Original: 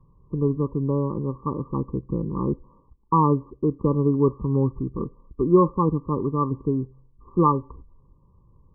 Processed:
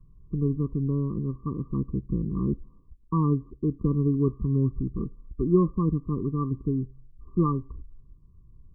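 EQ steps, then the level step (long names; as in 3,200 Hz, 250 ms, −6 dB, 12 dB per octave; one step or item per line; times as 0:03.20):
low-shelf EQ 67 Hz +12 dB
dynamic equaliser 200 Hz, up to +4 dB, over −44 dBFS, Q 5.7
Butterworth band-reject 720 Hz, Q 0.74
−3.5 dB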